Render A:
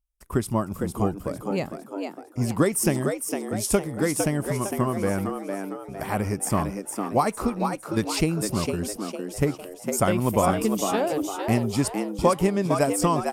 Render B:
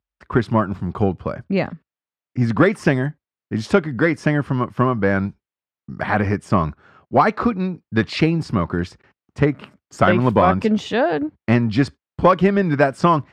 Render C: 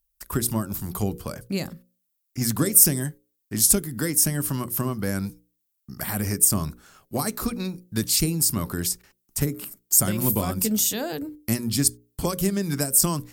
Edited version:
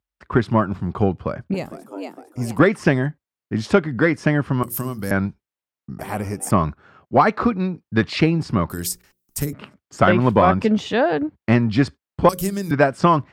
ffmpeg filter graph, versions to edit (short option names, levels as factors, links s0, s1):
-filter_complex "[0:a]asplit=2[s0][s1];[2:a]asplit=3[s2][s3][s4];[1:a]asplit=6[s5][s6][s7][s8][s9][s10];[s5]atrim=end=1.542[s11];[s0]atrim=start=1.538:end=2.592[s12];[s6]atrim=start=2.588:end=4.632[s13];[s2]atrim=start=4.628:end=5.112[s14];[s7]atrim=start=5.108:end=5.992[s15];[s1]atrim=start=5.988:end=6.512[s16];[s8]atrim=start=6.508:end=8.702[s17];[s3]atrim=start=8.698:end=9.532[s18];[s9]atrim=start=9.528:end=12.292[s19];[s4]atrim=start=12.288:end=12.712[s20];[s10]atrim=start=12.708[s21];[s11][s12]acrossfade=d=0.004:c1=hsin:c2=hsin[s22];[s22][s13]acrossfade=d=0.004:c1=hsin:c2=hsin[s23];[s23][s14]acrossfade=d=0.004:c1=hsin:c2=hsin[s24];[s24][s15]acrossfade=d=0.004:c1=hsin:c2=hsin[s25];[s25][s16]acrossfade=d=0.004:c1=hsin:c2=hsin[s26];[s26][s17]acrossfade=d=0.004:c1=hsin:c2=hsin[s27];[s27][s18]acrossfade=d=0.004:c1=hsin:c2=hsin[s28];[s28][s19]acrossfade=d=0.004:c1=hsin:c2=hsin[s29];[s29][s20]acrossfade=d=0.004:c1=hsin:c2=hsin[s30];[s30][s21]acrossfade=d=0.004:c1=hsin:c2=hsin"